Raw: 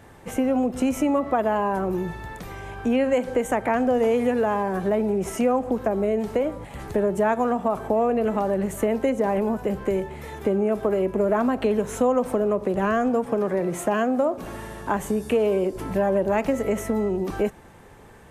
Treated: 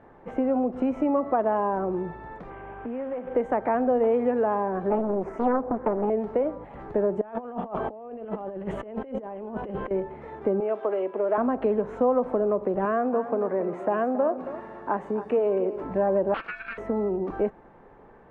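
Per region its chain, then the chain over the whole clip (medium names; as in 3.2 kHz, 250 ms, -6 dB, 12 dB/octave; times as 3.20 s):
2.50–3.35 s: CVSD coder 16 kbps + compression 4:1, threshold -28 dBFS
4.90–6.10 s: high-order bell 3.6 kHz -10 dB 1.2 oct + loudspeaker Doppler distortion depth 0.87 ms
7.21–9.91 s: peaking EQ 3.1 kHz +11.5 dB 0.46 oct + compressor with a negative ratio -29 dBFS, ratio -0.5
10.60–11.38 s: high-pass 420 Hz + peaking EQ 3.2 kHz +9.5 dB 0.85 oct
12.85–15.84 s: high-pass 190 Hz 6 dB/octave + band-stop 3.2 kHz, Q 17 + delay 275 ms -12.5 dB
16.34–16.78 s: high-pass 340 Hz 6 dB/octave + ring modulator 2 kHz + loudspeaker Doppler distortion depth 0.31 ms
whole clip: low-pass 1.2 kHz 12 dB/octave; peaking EQ 81 Hz -12.5 dB 2 oct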